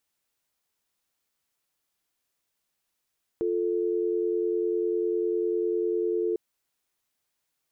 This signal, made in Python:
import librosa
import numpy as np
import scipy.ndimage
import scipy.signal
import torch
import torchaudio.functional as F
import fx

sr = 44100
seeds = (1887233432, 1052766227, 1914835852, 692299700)

y = fx.call_progress(sr, length_s=2.95, kind='dial tone', level_db=-26.5)